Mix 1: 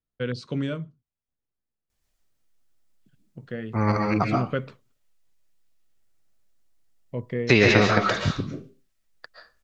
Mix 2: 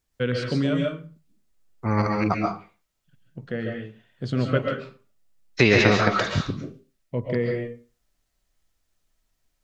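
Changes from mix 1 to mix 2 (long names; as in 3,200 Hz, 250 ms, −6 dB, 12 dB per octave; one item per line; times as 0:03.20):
first voice: send on
second voice: entry −1.90 s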